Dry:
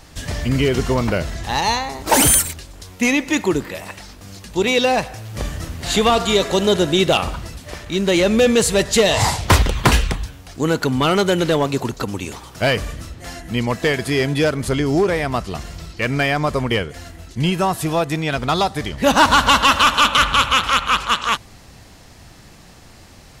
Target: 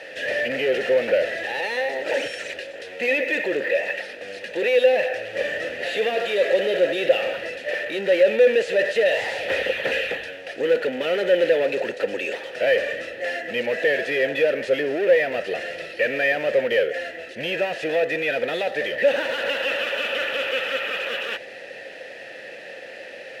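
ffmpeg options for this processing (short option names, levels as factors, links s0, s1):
-filter_complex "[0:a]asplit=2[s0][s1];[s1]highpass=f=720:p=1,volume=35.5,asoftclip=type=tanh:threshold=0.668[s2];[s0][s2]amix=inputs=2:normalize=0,lowpass=f=3800:p=1,volume=0.501,acrusher=samples=3:mix=1:aa=0.000001,asplit=3[s3][s4][s5];[s3]bandpass=f=530:t=q:w=8,volume=1[s6];[s4]bandpass=f=1840:t=q:w=8,volume=0.501[s7];[s5]bandpass=f=2480:t=q:w=8,volume=0.355[s8];[s6][s7][s8]amix=inputs=3:normalize=0"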